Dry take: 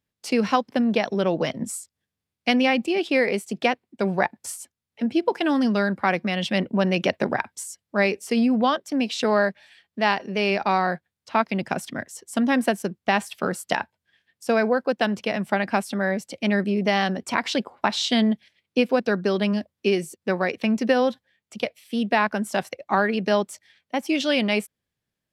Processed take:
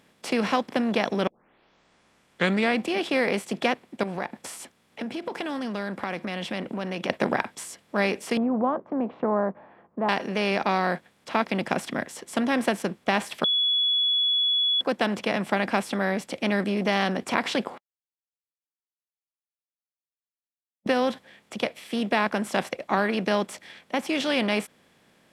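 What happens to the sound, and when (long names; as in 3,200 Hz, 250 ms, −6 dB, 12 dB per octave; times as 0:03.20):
0:01.27: tape start 1.59 s
0:04.03–0:07.10: downward compressor 3 to 1, threshold −33 dBFS
0:08.37–0:10.09: Chebyshev low-pass filter 1,100 Hz, order 4
0:13.44–0:14.81: beep over 3,390 Hz −14 dBFS
0:17.78–0:20.86: silence
whole clip: compressor on every frequency bin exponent 0.6; level −6 dB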